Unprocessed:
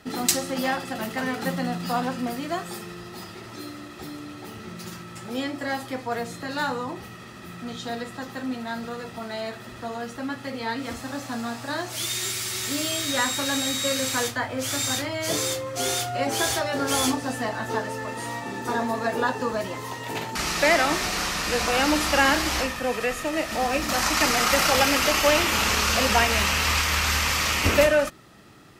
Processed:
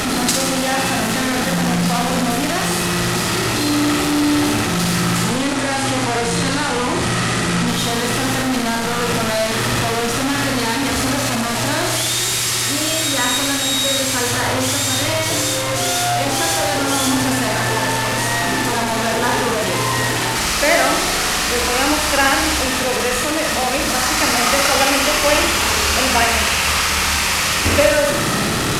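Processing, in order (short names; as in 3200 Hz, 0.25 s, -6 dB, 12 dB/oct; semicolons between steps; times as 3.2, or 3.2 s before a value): delta modulation 64 kbps, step -17.5 dBFS; 5.24–7.68 Chebyshev low-pass 10000 Hz, order 3; flutter echo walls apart 9.9 m, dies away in 0.77 s; gain +3 dB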